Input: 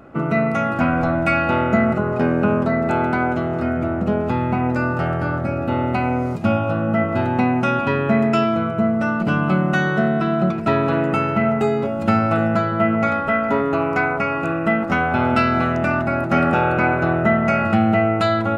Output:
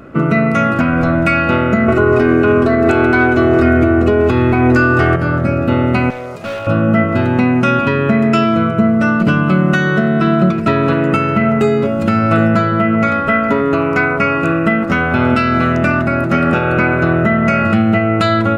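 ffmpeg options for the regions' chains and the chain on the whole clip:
ffmpeg -i in.wav -filter_complex "[0:a]asettb=1/sr,asplit=3[link_01][link_02][link_03];[link_01]atrim=end=1.884[link_04];[link_02]atrim=start=1.88:end=5.16,asetpts=PTS-STARTPTS,afade=type=in:duration=0.004:curve=qsin,afade=type=out:start_time=3.276:duration=0.004:curve=qsin,aecho=1:1:2.7:1,atrim=end_sample=144648,acontrast=23[link_05];[link_03]atrim=start=5.156[link_06];[link_04][link_05]acrossfade=duration=0.004:curve1=hsin:curve2=qsin[link_07];[link_07][link_06]acrossfade=duration=0.004:curve1=qsin:curve2=hsin,asettb=1/sr,asplit=3[link_08][link_09][link_10];[link_08]atrim=end=6.104[link_11];[link_09]atrim=start=6.1:end=6.67,asetpts=PTS-STARTPTS,afade=type=in:duration=0.004:curve=qsin,afade=type=out:start_time=0.566:duration=0.004:curve=qsin,lowshelf=frequency=380:width_type=q:width=1.5:gain=-11,volume=20dB,asoftclip=hard,volume=-20dB,acompressor=threshold=-32dB:ratio=2:attack=3.2:release=140:knee=1:detection=peak[link_12];[link_10]atrim=start=6.666[link_13];[link_11][link_12]acrossfade=duration=0.004:curve1=hsin:curve2=qsin[link_14];[link_14][link_13]acrossfade=duration=0.004:curve1=qsin:curve2=hsin,equalizer=frequency=800:width=2.9:gain=-10,alimiter=limit=-11.5dB:level=0:latency=1:release=274,volume=8.5dB" out.wav

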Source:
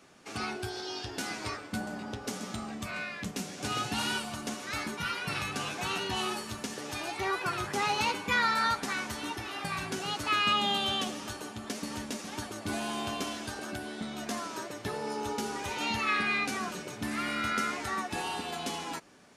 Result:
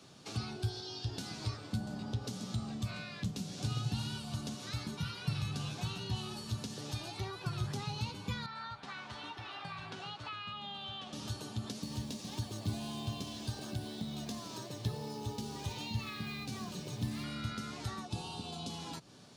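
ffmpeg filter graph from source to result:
ffmpeg -i in.wav -filter_complex "[0:a]asettb=1/sr,asplit=3[link_01][link_02][link_03];[link_01]atrim=end=8.464[link_04];[link_02]atrim=start=8.46:end=11.13,asetpts=PTS-STARTPTS,afade=type=in:duration=0.004:curve=qsin,afade=type=out:start_time=2.666:duration=0.004:curve=qsin,lowpass=frequency=10000:width=0.5412,lowpass=frequency=10000:width=1.3066,acrossover=split=600 3200:gain=0.224 1 0.112[link_05][link_06][link_07];[link_05][link_06][link_07]amix=inputs=3:normalize=0[link_08];[link_03]atrim=start=11.126[link_09];[link_04][link_08]acrossfade=duration=0.004:curve1=hsin:curve2=qsin[link_10];[link_10][link_09]acrossfade=duration=0.004:curve1=qsin:curve2=hsin,asettb=1/sr,asplit=3[link_11][link_12][link_13];[link_11]atrim=end=11.824[link_14];[link_12]atrim=start=11.82:end=17.24,asetpts=PTS-STARTPTS,afade=type=in:duration=0.004:curve=qsin,afade=type=out:start_time=5.416:duration=0.004:curve=qsin,acrusher=bits=4:mode=log:mix=0:aa=0.000001,bandreject=frequency=1400:width=6[link_15];[link_13]atrim=start=17.236[link_16];[link_14][link_15]acrossfade=duration=0.004:curve1=hsin:curve2=qsin[link_17];[link_17][link_16]acrossfade=duration=0.004:curve1=qsin:curve2=hsin,asettb=1/sr,asplit=3[link_18][link_19][link_20];[link_18]atrim=end=18.054[link_21];[link_19]atrim=start=18.05:end=18.7,asetpts=PTS-STARTPTS,afade=type=in:duration=0.004:curve=qsin,afade=type=out:start_time=0.646:duration=0.004:curve=qsin,lowpass=frequency=11000:width=0.5412,lowpass=frequency=11000:width=1.3066,equalizer=frequency=1800:width_type=o:width=0.39:gain=-15[link_22];[link_20]atrim=start=18.696[link_23];[link_21][link_22]acrossfade=duration=0.004:curve1=hsin:curve2=qsin[link_24];[link_24][link_23]acrossfade=duration=0.004:curve1=qsin:curve2=hsin,equalizer=frequency=125:width_type=o:width=1:gain=12,equalizer=frequency=2000:width_type=o:width=1:gain=-7,equalizer=frequency=4000:width_type=o:width=1:gain=9,acrossover=split=170[link_25][link_26];[link_26]acompressor=threshold=-41dB:ratio=6[link_27];[link_25][link_27]amix=inputs=2:normalize=0,volume=-1dB" out.wav

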